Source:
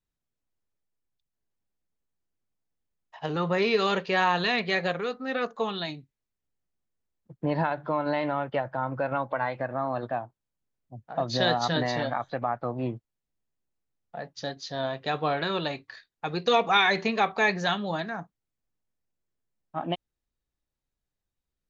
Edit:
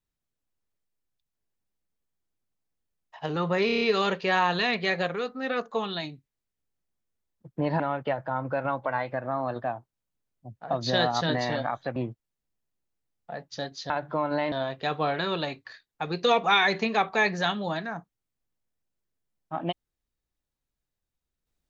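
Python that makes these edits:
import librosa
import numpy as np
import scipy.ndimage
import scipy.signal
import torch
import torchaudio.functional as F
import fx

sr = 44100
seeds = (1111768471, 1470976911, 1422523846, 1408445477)

y = fx.edit(x, sr, fx.stutter(start_s=3.66, slice_s=0.03, count=6),
    fx.move(start_s=7.65, length_s=0.62, to_s=14.75),
    fx.cut(start_s=12.43, length_s=0.38), tone=tone)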